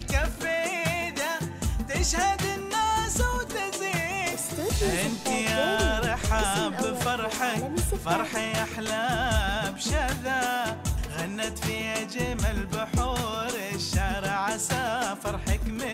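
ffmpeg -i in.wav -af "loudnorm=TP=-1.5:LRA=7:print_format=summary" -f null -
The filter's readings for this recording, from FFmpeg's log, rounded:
Input Integrated:    -27.6 LUFS
Input True Peak:     -10.5 dBTP
Input LRA:             2.1 LU
Input Threshold:     -37.6 LUFS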